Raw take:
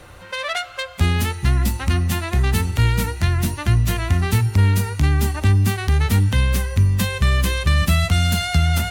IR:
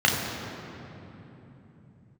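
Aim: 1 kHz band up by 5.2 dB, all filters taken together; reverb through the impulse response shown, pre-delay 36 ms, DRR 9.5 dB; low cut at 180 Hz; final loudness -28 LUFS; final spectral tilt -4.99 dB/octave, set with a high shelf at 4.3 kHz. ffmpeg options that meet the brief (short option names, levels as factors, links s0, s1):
-filter_complex "[0:a]highpass=180,equalizer=f=1000:t=o:g=7.5,highshelf=f=4300:g=-7,asplit=2[s0][s1];[1:a]atrim=start_sample=2205,adelay=36[s2];[s1][s2]afir=irnorm=-1:irlink=0,volume=0.0422[s3];[s0][s3]amix=inputs=2:normalize=0,volume=0.596"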